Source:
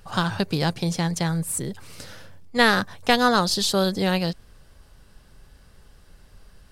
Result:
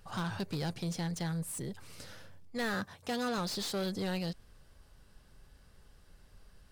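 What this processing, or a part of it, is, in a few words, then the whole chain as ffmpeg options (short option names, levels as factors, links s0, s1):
saturation between pre-emphasis and de-emphasis: -filter_complex "[0:a]highshelf=f=3400:g=8.5,asoftclip=type=tanh:threshold=0.0841,highshelf=f=3400:g=-8.5,asettb=1/sr,asplit=3[s0][s1][s2];[s0]atrim=end=2.744[s3];[s1]atrim=start=2.74:end=3.38,asetpts=PTS-STARTPTS,afade=t=in:d=0.004:c=qsin,afade=t=out:st=0.636:d=0.004:c=qsin,highpass=55[s4];[s2]atrim=start=3.376[s5];[s3][s4]acrossfade=d=0.004:c1=hsin:c2=qsin[s6];[s6][s5]acrossfade=d=0.004:c1=qsin:c2=hsin,volume=0.398"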